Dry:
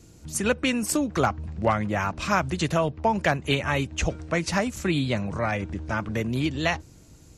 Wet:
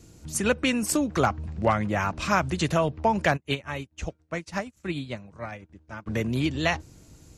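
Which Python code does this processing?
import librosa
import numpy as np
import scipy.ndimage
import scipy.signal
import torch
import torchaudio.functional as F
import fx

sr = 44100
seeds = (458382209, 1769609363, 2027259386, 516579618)

y = fx.upward_expand(x, sr, threshold_db=-42.0, expansion=2.5, at=(3.36, 6.06), fade=0.02)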